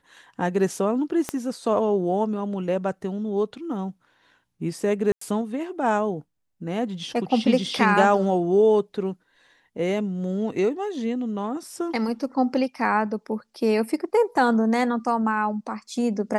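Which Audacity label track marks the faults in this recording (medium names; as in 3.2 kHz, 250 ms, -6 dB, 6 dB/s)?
1.290000	1.290000	pop -12 dBFS
5.120000	5.210000	dropout 94 ms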